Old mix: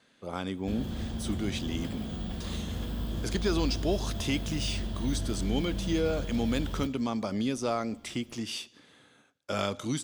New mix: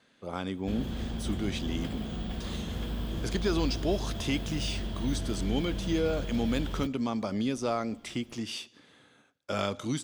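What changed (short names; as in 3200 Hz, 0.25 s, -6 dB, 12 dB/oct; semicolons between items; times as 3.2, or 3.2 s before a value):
background: send -9.5 dB; master: add high shelf 6400 Hz -4.5 dB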